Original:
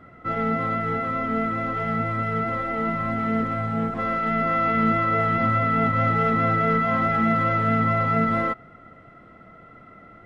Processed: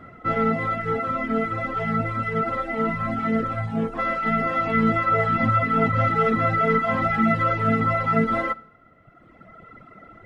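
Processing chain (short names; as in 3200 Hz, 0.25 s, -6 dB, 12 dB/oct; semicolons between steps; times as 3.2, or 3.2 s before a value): Schroeder reverb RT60 0.69 s, DRR 11.5 dB; reverb removal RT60 1.7 s; gain +4 dB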